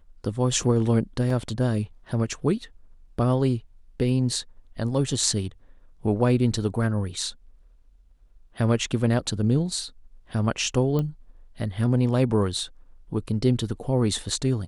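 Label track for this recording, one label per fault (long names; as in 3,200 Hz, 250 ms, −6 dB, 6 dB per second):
1.300000	1.300000	drop-out 3.5 ms
10.990000	10.990000	click −16 dBFS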